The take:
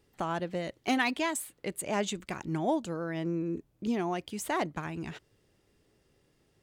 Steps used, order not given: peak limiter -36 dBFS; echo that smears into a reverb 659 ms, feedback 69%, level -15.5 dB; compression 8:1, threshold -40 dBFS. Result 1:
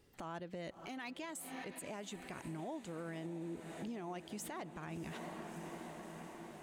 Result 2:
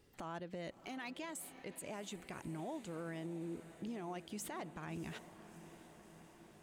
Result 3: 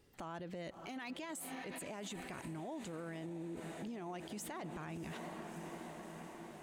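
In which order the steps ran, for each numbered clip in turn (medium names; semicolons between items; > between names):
echo that smears into a reverb > compression > peak limiter; compression > echo that smears into a reverb > peak limiter; echo that smears into a reverb > peak limiter > compression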